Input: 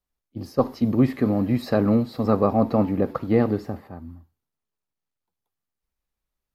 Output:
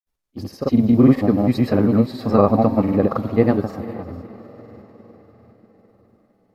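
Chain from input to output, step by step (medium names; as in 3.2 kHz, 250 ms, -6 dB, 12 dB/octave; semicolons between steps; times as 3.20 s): echo that smears into a reverb 513 ms, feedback 51%, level -16 dB; granulator, pitch spread up and down by 0 st; trim +5.5 dB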